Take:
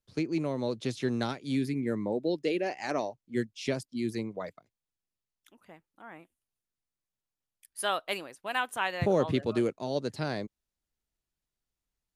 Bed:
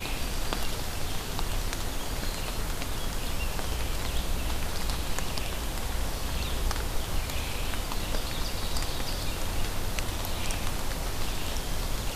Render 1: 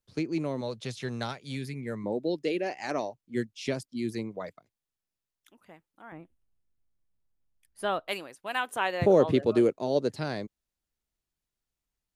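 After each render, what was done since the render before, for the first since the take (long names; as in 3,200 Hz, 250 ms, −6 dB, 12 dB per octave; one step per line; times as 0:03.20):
0:00.61–0:02.04: parametric band 300 Hz −11.5 dB 0.72 octaves
0:06.12–0:08.08: spectral tilt −3.5 dB per octave
0:08.66–0:10.13: parametric band 440 Hz +6.5 dB 1.6 octaves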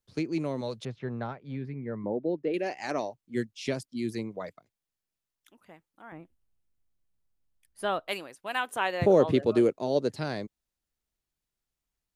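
0:00.85–0:02.54: low-pass filter 1,400 Hz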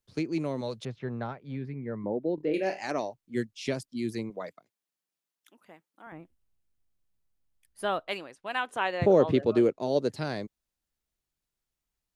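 0:02.35–0:02.83: flutter between parallel walls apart 4.5 metres, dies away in 0.24 s
0:04.30–0:06.07: high-pass filter 180 Hz
0:08.03–0:09.82: high-frequency loss of the air 59 metres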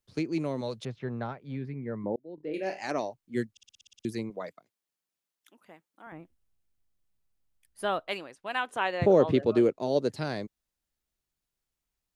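0:02.16–0:02.89: fade in
0:03.51: stutter in place 0.06 s, 9 plays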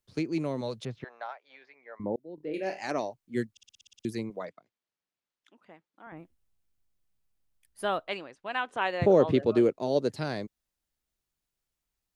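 0:01.04–0:02.00: Chebyshev band-pass filter 660–6,200 Hz, order 3
0:04.45–0:06.17: high-frequency loss of the air 110 metres
0:08.08–0:08.82: high-frequency loss of the air 76 metres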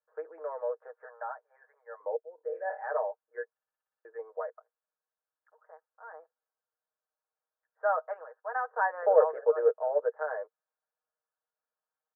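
Chebyshev band-pass filter 460–1,700 Hz, order 5
comb filter 6.4 ms, depth 73%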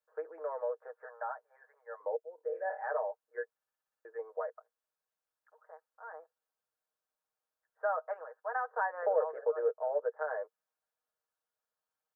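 downward compressor 2 to 1, threshold −32 dBFS, peak gain reduction 9.5 dB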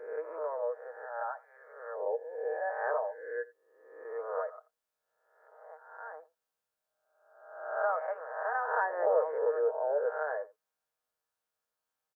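peak hold with a rise ahead of every peak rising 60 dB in 0.92 s
single-tap delay 86 ms −21 dB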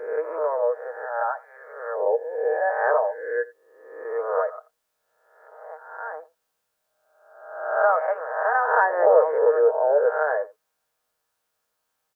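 level +11 dB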